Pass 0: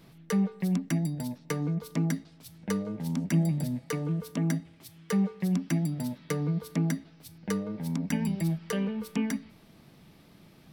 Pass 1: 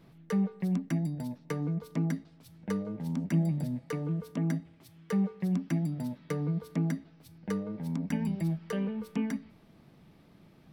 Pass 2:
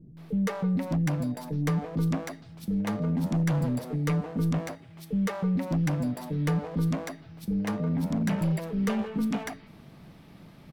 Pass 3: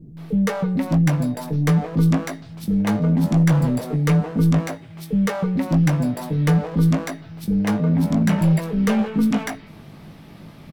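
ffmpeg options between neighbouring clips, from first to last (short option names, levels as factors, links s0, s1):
-af "highshelf=f=2800:g=-9,volume=0.794"
-filter_complex "[0:a]asoftclip=type=hard:threshold=0.0266,acrossover=split=370[s0][s1];[s1]adelay=170[s2];[s0][s2]amix=inputs=2:normalize=0,volume=2.66"
-filter_complex "[0:a]asplit=2[s0][s1];[s1]adelay=19,volume=0.422[s2];[s0][s2]amix=inputs=2:normalize=0,volume=2.37"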